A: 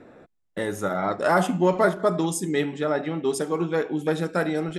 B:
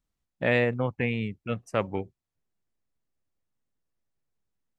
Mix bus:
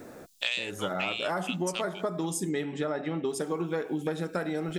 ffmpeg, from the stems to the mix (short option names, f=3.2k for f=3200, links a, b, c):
-filter_complex "[0:a]volume=2.5dB[a];[1:a]highpass=1.2k,acontrast=71,aexciter=amount=16:drive=5.6:freq=2.9k,volume=-3.5dB,asplit=3[b][c][d];[b]atrim=end=2.5,asetpts=PTS-STARTPTS,afade=t=out:st=2.496:d=0.004:c=hsin[e];[c]atrim=start=2.5:end=3.29,asetpts=PTS-STARTPTS,volume=0[f];[d]atrim=start=3.29,asetpts=PTS-STARTPTS,afade=t=in:d=0.004:c=hsin[g];[e][f][g]concat=n=3:v=0:a=1[h];[a][h]amix=inputs=2:normalize=0,acompressor=threshold=-27dB:ratio=12"